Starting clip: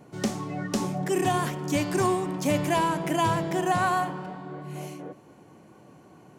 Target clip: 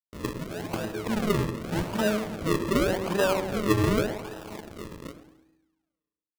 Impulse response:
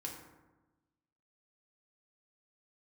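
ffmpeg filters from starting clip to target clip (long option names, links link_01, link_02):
-filter_complex "[0:a]highpass=380,tiltshelf=frequency=1400:gain=-3,aresample=16000,acrusher=bits=6:mix=0:aa=0.000001,aresample=44100,aresample=11025,aresample=44100,asetrate=25476,aresample=44100,atempo=1.73107,asplit=2[link_01][link_02];[1:a]atrim=start_sample=2205[link_03];[link_02][link_03]afir=irnorm=-1:irlink=0,volume=-9.5dB[link_04];[link_01][link_04]amix=inputs=2:normalize=0,acrusher=samples=40:mix=1:aa=0.000001:lfo=1:lforange=40:lforate=0.86,asplit=2[link_05][link_06];[link_06]adelay=109,lowpass=frequency=960:poles=1,volume=-10dB,asplit=2[link_07][link_08];[link_08]adelay=109,lowpass=frequency=960:poles=1,volume=0.43,asplit=2[link_09][link_10];[link_10]adelay=109,lowpass=frequency=960:poles=1,volume=0.43,asplit=2[link_11][link_12];[link_12]adelay=109,lowpass=frequency=960:poles=1,volume=0.43,asplit=2[link_13][link_14];[link_14]adelay=109,lowpass=frequency=960:poles=1,volume=0.43[link_15];[link_05][link_07][link_09][link_11][link_13][link_15]amix=inputs=6:normalize=0,adynamicequalizer=threshold=0.00562:dfrequency=3400:dqfactor=0.7:tfrequency=3400:tqfactor=0.7:attack=5:release=100:ratio=0.375:range=2:mode=cutabove:tftype=highshelf,volume=1.5dB"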